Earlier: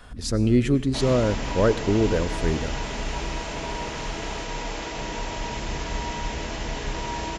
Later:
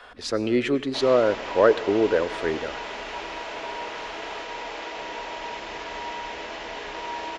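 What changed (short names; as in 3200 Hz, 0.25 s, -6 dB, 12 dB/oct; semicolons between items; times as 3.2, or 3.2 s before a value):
speech +5.5 dB; master: add three-band isolator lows -22 dB, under 340 Hz, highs -17 dB, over 4600 Hz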